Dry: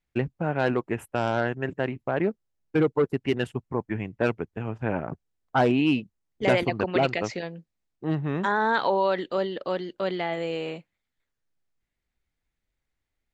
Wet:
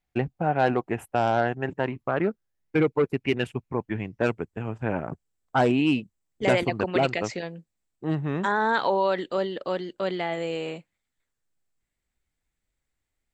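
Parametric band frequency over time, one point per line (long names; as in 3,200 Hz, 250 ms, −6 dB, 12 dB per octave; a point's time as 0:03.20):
parametric band +9.5 dB 0.27 octaves
0:01.58 750 Hz
0:02.89 2,400 Hz
0:03.77 2,400 Hz
0:04.31 7,800 Hz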